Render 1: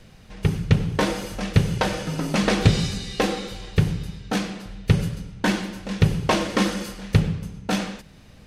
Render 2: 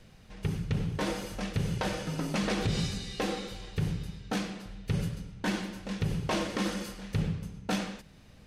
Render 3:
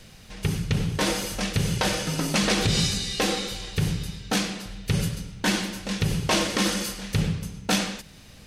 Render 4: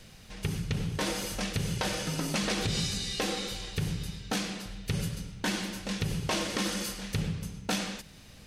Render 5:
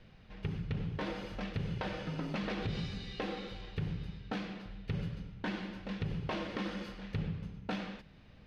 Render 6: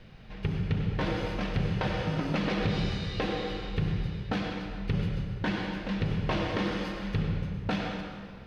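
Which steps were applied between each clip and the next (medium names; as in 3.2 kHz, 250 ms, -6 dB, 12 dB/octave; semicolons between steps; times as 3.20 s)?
peak limiter -13.5 dBFS, peak gain reduction 10.5 dB; trim -6.5 dB
treble shelf 2.6 kHz +10 dB; trim +5.5 dB
compression 2:1, threshold -26 dBFS, peak gain reduction 5 dB; trim -3.5 dB
distance through air 330 m; trim -4.5 dB
plate-style reverb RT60 1.9 s, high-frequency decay 0.65×, pre-delay 85 ms, DRR 4 dB; trim +6.5 dB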